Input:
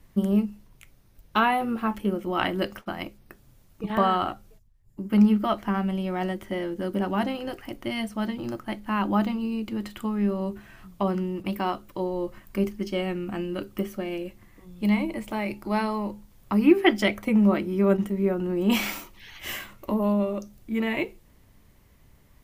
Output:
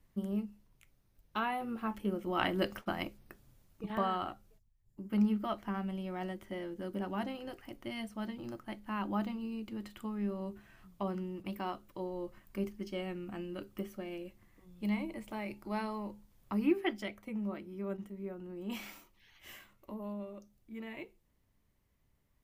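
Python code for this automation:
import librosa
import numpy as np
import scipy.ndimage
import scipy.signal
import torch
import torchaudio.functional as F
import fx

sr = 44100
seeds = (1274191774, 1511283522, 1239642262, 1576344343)

y = fx.gain(x, sr, db=fx.line((1.42, -13.0), (2.9, -3.0), (4.06, -11.0), (16.65, -11.0), (17.1, -18.0)))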